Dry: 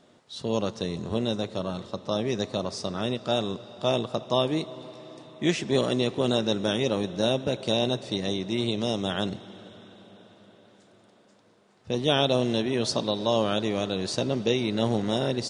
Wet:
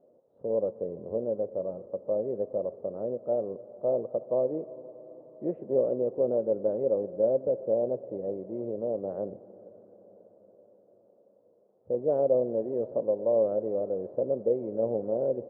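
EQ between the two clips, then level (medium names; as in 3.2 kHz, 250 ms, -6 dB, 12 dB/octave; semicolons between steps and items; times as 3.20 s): four-pole ladder low-pass 580 Hz, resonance 70%; distance through air 130 m; bass shelf 340 Hz -10.5 dB; +6.5 dB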